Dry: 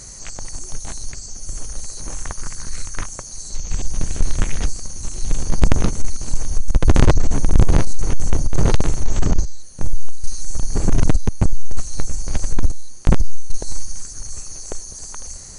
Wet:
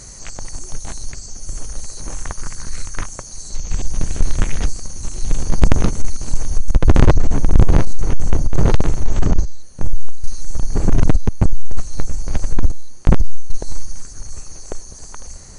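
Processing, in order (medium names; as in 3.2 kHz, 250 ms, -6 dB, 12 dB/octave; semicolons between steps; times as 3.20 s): treble shelf 4.1 kHz -4 dB, from 6.75 s -9.5 dB; trim +2 dB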